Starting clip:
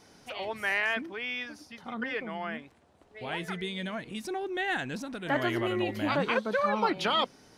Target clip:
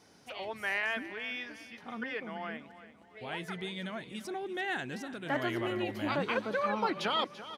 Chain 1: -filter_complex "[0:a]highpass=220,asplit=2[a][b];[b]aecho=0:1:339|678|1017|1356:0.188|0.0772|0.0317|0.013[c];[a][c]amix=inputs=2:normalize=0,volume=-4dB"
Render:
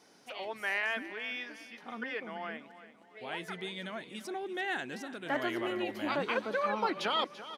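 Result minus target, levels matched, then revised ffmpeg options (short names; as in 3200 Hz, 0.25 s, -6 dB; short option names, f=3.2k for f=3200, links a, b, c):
125 Hz band -6.5 dB
-filter_complex "[0:a]highpass=66,asplit=2[a][b];[b]aecho=0:1:339|678|1017|1356:0.188|0.0772|0.0317|0.013[c];[a][c]amix=inputs=2:normalize=0,volume=-4dB"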